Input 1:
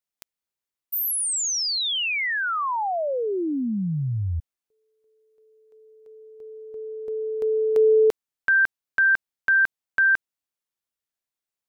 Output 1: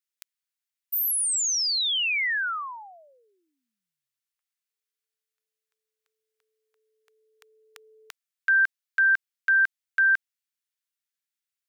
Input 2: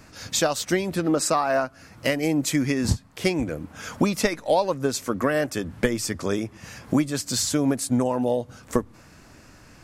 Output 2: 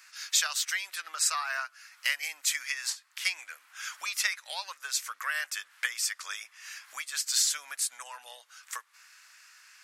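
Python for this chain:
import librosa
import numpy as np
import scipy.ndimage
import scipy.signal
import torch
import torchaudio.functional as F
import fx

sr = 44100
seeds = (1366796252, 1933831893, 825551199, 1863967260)

y = scipy.signal.sosfilt(scipy.signal.butter(4, 1400.0, 'highpass', fs=sr, output='sos'), x)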